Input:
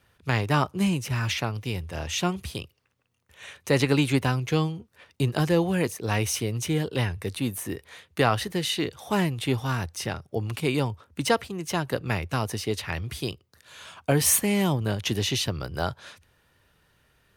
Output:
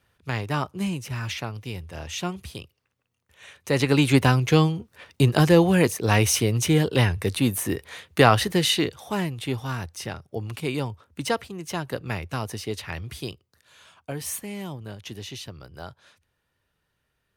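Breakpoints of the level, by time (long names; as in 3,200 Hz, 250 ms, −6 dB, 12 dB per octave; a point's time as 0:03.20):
0:03.54 −3.5 dB
0:04.21 +6 dB
0:08.71 +6 dB
0:09.14 −2.5 dB
0:13.24 −2.5 dB
0:14.15 −11 dB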